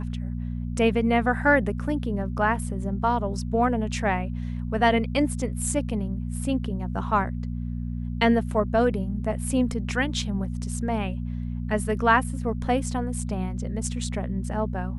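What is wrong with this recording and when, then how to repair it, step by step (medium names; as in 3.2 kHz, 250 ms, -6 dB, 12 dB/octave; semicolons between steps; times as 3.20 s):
hum 60 Hz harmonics 4 -30 dBFS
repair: de-hum 60 Hz, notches 4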